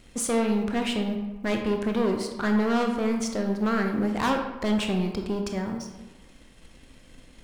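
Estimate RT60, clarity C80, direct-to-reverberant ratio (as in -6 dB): 1.2 s, 8.0 dB, 3.5 dB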